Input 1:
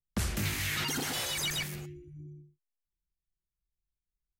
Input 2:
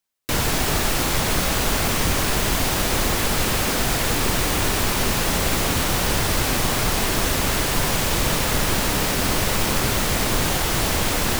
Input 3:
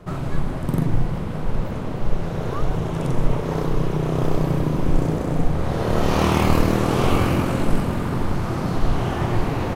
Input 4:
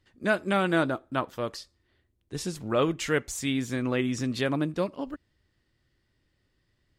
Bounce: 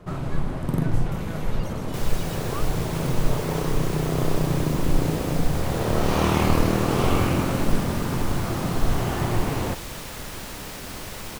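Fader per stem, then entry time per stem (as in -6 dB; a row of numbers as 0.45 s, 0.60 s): -13.0 dB, -14.5 dB, -2.5 dB, -18.0 dB; 0.75 s, 1.65 s, 0.00 s, 0.55 s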